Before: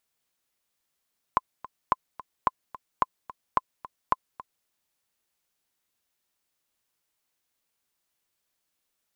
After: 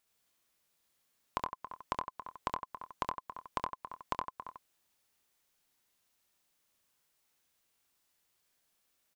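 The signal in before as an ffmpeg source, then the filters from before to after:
-f lavfi -i "aevalsrc='pow(10,(-7.5-18*gte(mod(t,2*60/218),60/218))/20)*sin(2*PI*1030*mod(t,60/218))*exp(-6.91*mod(t,60/218)/0.03)':duration=3.3:sample_rate=44100"
-filter_complex "[0:a]asplit=2[link_01][link_02];[link_02]aecho=0:1:92:0.501[link_03];[link_01][link_03]amix=inputs=2:normalize=0,acompressor=threshold=-36dB:ratio=3,asplit=2[link_04][link_05];[link_05]aecho=0:1:25|68:0.158|0.708[link_06];[link_04][link_06]amix=inputs=2:normalize=0"

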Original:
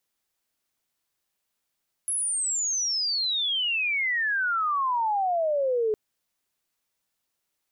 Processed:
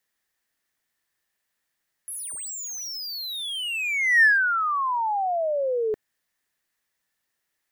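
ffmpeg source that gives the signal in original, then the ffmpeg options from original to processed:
-f lavfi -i "aevalsrc='pow(10,(-24.5+3*t/3.86)/20)*sin(2*PI*11000*3.86/log(420/11000)*(exp(log(420/11000)*t/3.86)-1))':duration=3.86:sample_rate=44100"
-filter_complex "[0:a]equalizer=frequency=1800:width_type=o:width=0.32:gain=12.5,acrossover=split=600|2300[link_01][link_02][link_03];[link_03]asoftclip=type=hard:threshold=-33.5dB[link_04];[link_01][link_02][link_04]amix=inputs=3:normalize=0"

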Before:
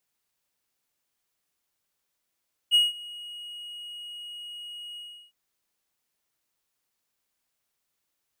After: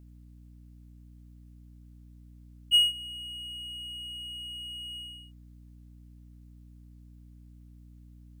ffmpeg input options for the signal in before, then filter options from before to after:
-f lavfi -i "aevalsrc='0.224*(1-4*abs(mod(2890*t+0.25,1)-0.5))':duration=2.608:sample_rate=44100,afade=type=in:duration=0.037,afade=type=out:start_time=0.037:duration=0.176:silence=0.075,afade=type=out:start_time=2.26:duration=0.348"
-af "aeval=exprs='val(0)+0.00316*(sin(2*PI*60*n/s)+sin(2*PI*2*60*n/s)/2+sin(2*PI*3*60*n/s)/3+sin(2*PI*4*60*n/s)/4+sin(2*PI*5*60*n/s)/5)':channel_layout=same"

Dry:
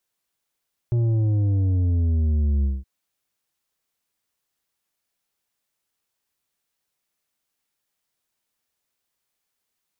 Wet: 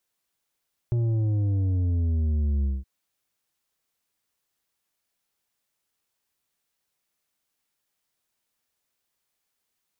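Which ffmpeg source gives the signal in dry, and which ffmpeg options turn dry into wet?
-f lavfi -i "aevalsrc='0.119*clip((1.92-t)/0.2,0,1)*tanh(2.37*sin(2*PI*120*1.92/log(65/120)*(exp(log(65/120)*t/1.92)-1)))/tanh(2.37)':duration=1.92:sample_rate=44100"
-af "acompressor=threshold=-23dB:ratio=6"

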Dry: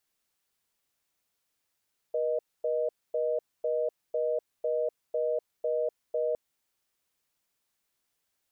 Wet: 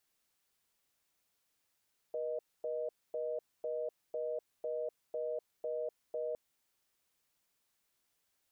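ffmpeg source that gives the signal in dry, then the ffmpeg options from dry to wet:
-f lavfi -i "aevalsrc='0.0376*(sin(2*PI*480*t)+sin(2*PI*620*t))*clip(min(mod(t,0.5),0.25-mod(t,0.5))/0.005,0,1)':duration=4.21:sample_rate=44100"
-af "alimiter=level_in=7.5dB:limit=-24dB:level=0:latency=1:release=21,volume=-7.5dB"

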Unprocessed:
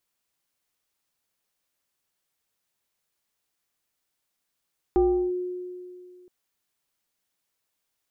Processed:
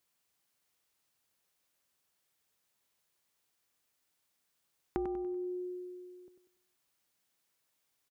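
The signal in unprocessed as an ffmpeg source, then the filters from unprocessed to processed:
-f lavfi -i "aevalsrc='0.168*pow(10,-3*t/2.31)*sin(2*PI*361*t+0.56*clip(1-t/0.36,0,1)*sin(2*PI*1.16*361*t))':duration=1.32:sample_rate=44100"
-filter_complex "[0:a]acompressor=threshold=-33dB:ratio=12,highpass=40,asplit=2[link_01][link_02];[link_02]aecho=0:1:96|192|288|384|480:0.355|0.149|0.0626|0.0263|0.011[link_03];[link_01][link_03]amix=inputs=2:normalize=0"

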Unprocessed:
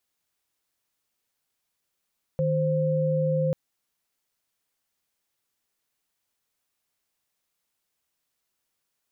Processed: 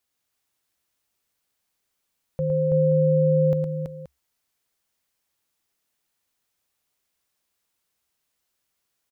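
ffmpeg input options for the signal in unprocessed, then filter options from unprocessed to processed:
-f lavfi -i "aevalsrc='0.0631*(sin(2*PI*155.56*t)+sin(2*PI*523.25*t))':duration=1.14:sample_rate=44100"
-af "equalizer=frequency=68:width_type=o:width=0.24:gain=7.5,aecho=1:1:111|329|527:0.501|0.631|0.211"

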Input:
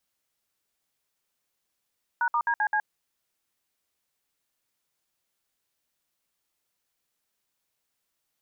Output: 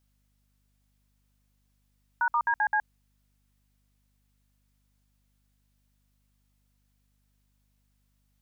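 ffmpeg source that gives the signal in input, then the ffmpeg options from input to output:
-f lavfi -i "aevalsrc='0.0596*clip(min(mod(t,0.13),0.07-mod(t,0.13))/0.002,0,1)*(eq(floor(t/0.13),0)*(sin(2*PI*941*mod(t,0.13))+sin(2*PI*1477*mod(t,0.13)))+eq(floor(t/0.13),1)*(sin(2*PI*941*mod(t,0.13))+sin(2*PI*1209*mod(t,0.13)))+eq(floor(t/0.13),2)*(sin(2*PI*941*mod(t,0.13))+sin(2*PI*1633*mod(t,0.13)))+eq(floor(t/0.13),3)*(sin(2*PI*852*mod(t,0.13))+sin(2*PI*1633*mod(t,0.13)))+eq(floor(t/0.13),4)*(sin(2*PI*852*mod(t,0.13))+sin(2*PI*1633*mod(t,0.13))))':duration=0.65:sample_rate=44100"
-af "aeval=exprs='val(0)+0.000316*(sin(2*PI*50*n/s)+sin(2*PI*2*50*n/s)/2+sin(2*PI*3*50*n/s)/3+sin(2*PI*4*50*n/s)/4+sin(2*PI*5*50*n/s)/5)':channel_layout=same"

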